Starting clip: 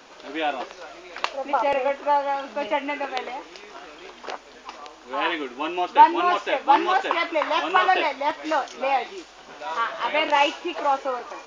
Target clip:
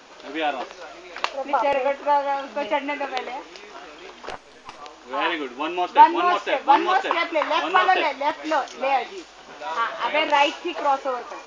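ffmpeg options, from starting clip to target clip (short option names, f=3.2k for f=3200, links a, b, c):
-filter_complex "[0:a]asettb=1/sr,asplit=3[a][b][c];[a]atrim=end=4.294[d];[b]atrim=start=4.29:end=4.81,asetpts=PTS-STARTPTS,afade=t=in:d=0.004:c=qsin,afade=t=out:st=0.516:d=0.004:c=qsin,aeval=exprs='if(lt(val(0),0),0.447*val(0),val(0))':c=same[e];[c]atrim=start=4.806[f];[d][e]acrossfade=d=0.004:c1=hsin:c2=qsin[g];[g][f]acrossfade=d=0.004:c1=qsin:c2=hsin,aresample=22050,aresample=44100,volume=1dB"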